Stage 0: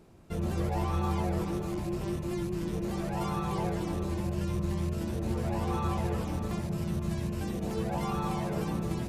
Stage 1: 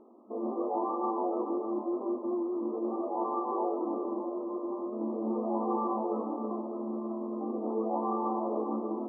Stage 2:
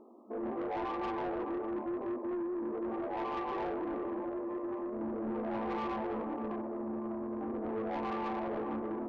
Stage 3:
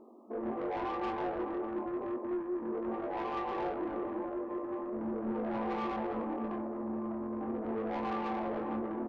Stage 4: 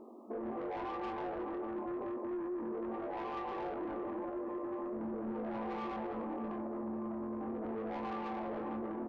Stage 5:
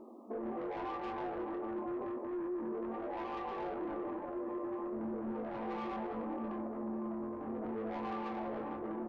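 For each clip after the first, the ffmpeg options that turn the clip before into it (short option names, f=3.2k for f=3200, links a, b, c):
-af "afftfilt=real='re*between(b*sr/4096,210,1300)':imag='im*between(b*sr/4096,210,1300)':win_size=4096:overlap=0.75,volume=3.5dB"
-af "asoftclip=type=tanh:threshold=-32dB"
-filter_complex "[0:a]asplit=2[a][b];[b]adelay=22,volume=-7dB[c];[a][c]amix=inputs=2:normalize=0"
-af "alimiter=level_in=13dB:limit=-24dB:level=0:latency=1:release=50,volume=-13dB,volume=3dB"
-af "flanger=delay=3.2:depth=6.3:regen=-61:speed=0.31:shape=triangular,volume=4dB"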